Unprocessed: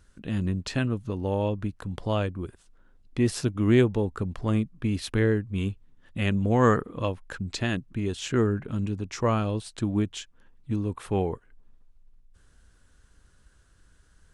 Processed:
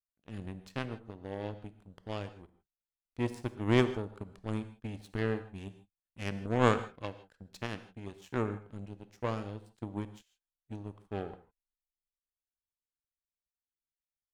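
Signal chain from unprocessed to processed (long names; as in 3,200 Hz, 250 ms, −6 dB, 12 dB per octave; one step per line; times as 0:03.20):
power curve on the samples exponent 2
noise gate −56 dBFS, range −6 dB
reverb whose tail is shaped and stops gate 180 ms flat, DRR 11.5 dB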